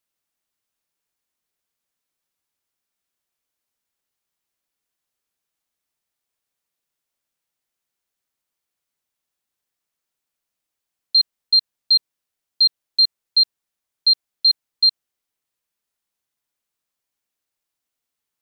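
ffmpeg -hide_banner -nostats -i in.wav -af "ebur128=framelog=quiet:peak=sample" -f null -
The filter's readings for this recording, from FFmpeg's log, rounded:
Integrated loudness:
  I:         -16.8 LUFS
  Threshold: -26.8 LUFS
Loudness range:
  LRA:         7.9 LU
  Threshold: -39.5 LUFS
  LRA low:   -25.6 LUFS
  LRA high:  -17.7 LUFS
Sample peak:
  Peak:       -9.1 dBFS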